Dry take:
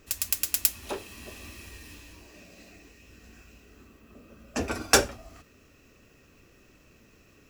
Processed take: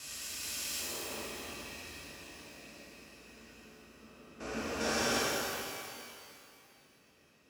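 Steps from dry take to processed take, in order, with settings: spectrogram pixelated in time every 400 ms; low-pass 7.8 kHz 12 dB/octave; expander -53 dBFS; high-pass 84 Hz 12 dB/octave; bass shelf 110 Hz -9.5 dB; pitch-shifted reverb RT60 2.3 s, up +12 st, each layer -8 dB, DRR -7.5 dB; trim -6 dB

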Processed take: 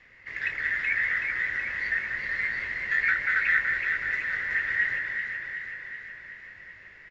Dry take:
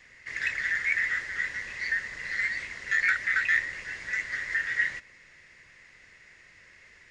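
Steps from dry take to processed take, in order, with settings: low-pass 3 kHz 12 dB/octave; doubling 19 ms -12.5 dB; on a send: echo whose repeats swap between lows and highs 188 ms, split 1.7 kHz, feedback 79%, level -2 dB

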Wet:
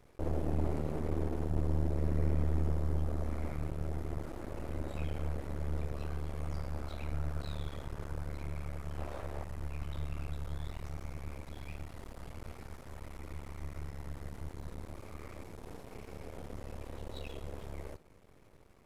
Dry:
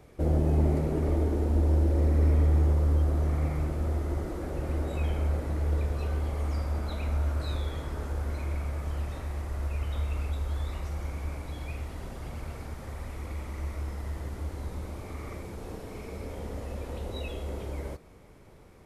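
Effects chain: 8.98–9.44 s: peaking EQ 610 Hz +10.5 dB 1.7 oct; half-wave rectifier; trim -4 dB

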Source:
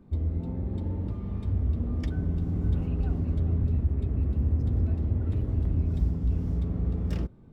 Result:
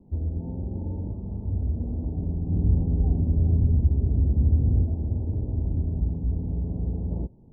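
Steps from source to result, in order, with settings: steep low-pass 950 Hz 72 dB/octave; 2.50–4.83 s: bass shelf 320 Hz +5.5 dB

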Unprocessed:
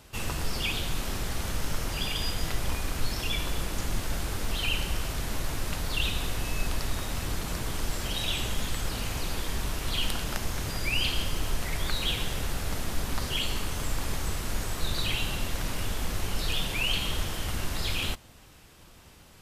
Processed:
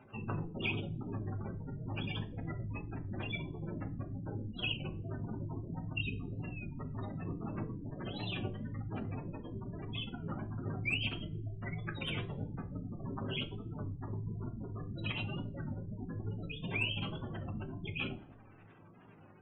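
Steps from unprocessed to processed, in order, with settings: median filter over 9 samples; spectral gate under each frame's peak -20 dB strong; treble shelf 2.1 kHz -9.5 dB; reverberation RT60 0.40 s, pre-delay 3 ms, DRR 5.5 dB; warped record 33 1/3 rpm, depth 100 cents; trim +2 dB

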